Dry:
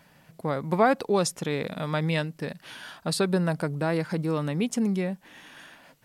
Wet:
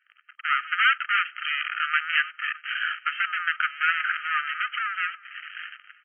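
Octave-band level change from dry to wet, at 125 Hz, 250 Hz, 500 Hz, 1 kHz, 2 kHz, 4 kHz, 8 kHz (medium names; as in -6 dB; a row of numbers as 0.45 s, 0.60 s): under -40 dB, under -40 dB, under -40 dB, +3.5 dB, +13.0 dB, +6.5 dB, under -40 dB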